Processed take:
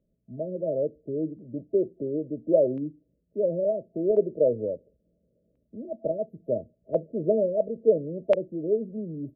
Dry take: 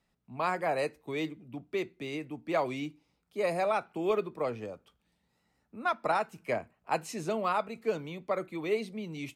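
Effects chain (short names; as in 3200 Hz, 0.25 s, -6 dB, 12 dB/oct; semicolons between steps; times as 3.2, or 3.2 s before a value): FFT band-reject 660–11000 Hz; LFO low-pass square 0.36 Hz 570–2600 Hz; gain +5 dB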